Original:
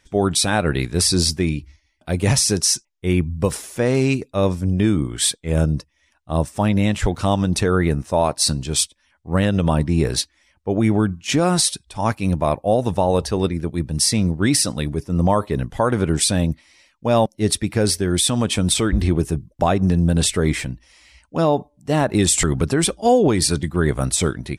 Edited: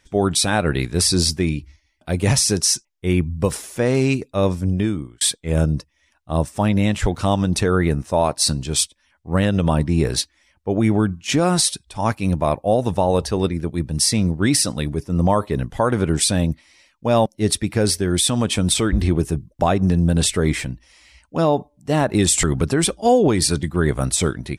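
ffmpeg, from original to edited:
-filter_complex "[0:a]asplit=2[a][b];[a]atrim=end=5.21,asetpts=PTS-STARTPTS,afade=t=out:st=4.69:d=0.52[c];[b]atrim=start=5.21,asetpts=PTS-STARTPTS,afade=t=in:d=0.004:c=hsin[d];[c][d]concat=n=2:v=0:a=1"

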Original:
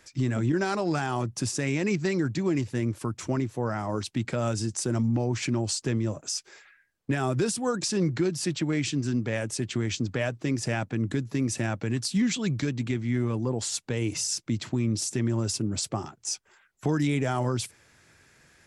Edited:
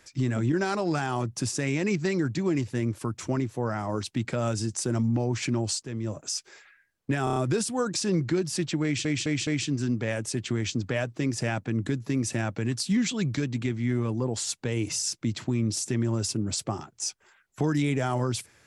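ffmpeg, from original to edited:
-filter_complex "[0:a]asplit=9[a][b][c][d][e][f][g][h][i];[a]atrim=end=5.83,asetpts=PTS-STARTPTS,afade=t=out:st=5.826:d=0.004:c=hsin:silence=0.223872[j];[b]atrim=start=5.83:end=7.272,asetpts=PTS-STARTPTS,afade=t=in:d=0.37:silence=0.223872[k];[c]atrim=start=7.238:end=7.272[l];[d]atrim=start=7.238:end=7.272[m];[e]atrim=start=7.238:end=7.272[n];[f]atrim=start=7.238:end=8.932[o];[g]atrim=start=8.718:end=8.932[p];[h]atrim=start=8.718:end=8.932[q];[i]atrim=start=8.718[r];[j][k]concat=n=2:v=0:a=1[s];[s][l]acrossfade=d=0.004:c1=hsin:c2=hsin[t];[t][m]acrossfade=d=0.004:c1=hsin:c2=hsin[u];[u][n]acrossfade=d=0.004:c1=hsin:c2=hsin[v];[v][o]acrossfade=d=0.004:c1=hsin:c2=hsin[w];[w][p]acrossfade=d=0.004:c1=hsin:c2=hsin[x];[x][q]acrossfade=d=0.004:c1=hsin:c2=hsin[y];[y][r]acrossfade=d=0.004:c1=hsin:c2=hsin"

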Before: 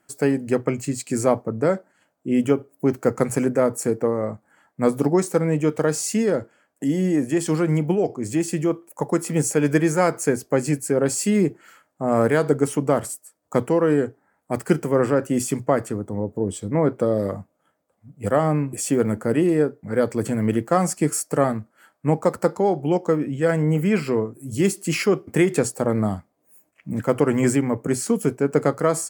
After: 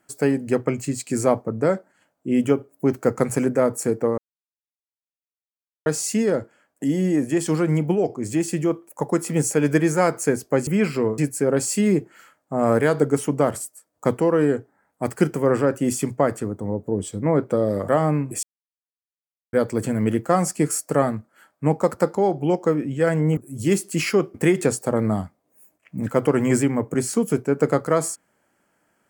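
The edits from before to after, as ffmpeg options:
-filter_complex "[0:a]asplit=9[a][b][c][d][e][f][g][h][i];[a]atrim=end=4.18,asetpts=PTS-STARTPTS,afade=t=out:st=4.176:d=0.004:c=hsin[j];[b]atrim=start=4.18:end=5.86,asetpts=PTS-STARTPTS,volume=0[k];[c]atrim=start=5.86:end=10.672,asetpts=PTS-STARTPTS,afade=t=in:d=0.004:c=hsin[l];[d]atrim=start=23.788:end=24.302[m];[e]atrim=start=10.668:end=17.372[n];[f]atrim=start=18.298:end=18.85,asetpts=PTS-STARTPTS,afade=t=out:st=0.548:d=0.004:c=hsin[o];[g]atrim=start=18.85:end=19.95,asetpts=PTS-STARTPTS,volume=0[p];[h]atrim=start=19.95:end=23.792,asetpts=PTS-STARTPTS,afade=t=in:d=0.004:c=hsin[q];[i]atrim=start=24.298[r];[j][k][l]concat=n=3:v=0:a=1[s];[s][m]acrossfade=d=0.004:c1=hsin:c2=hsin[t];[t][n]acrossfade=d=0.004:c1=hsin:c2=hsin[u];[o][p][q]concat=n=3:v=0:a=1[v];[u][v]acrossfade=d=0.004:c1=hsin:c2=hsin[w];[w][r]acrossfade=d=0.004:c1=hsin:c2=hsin"

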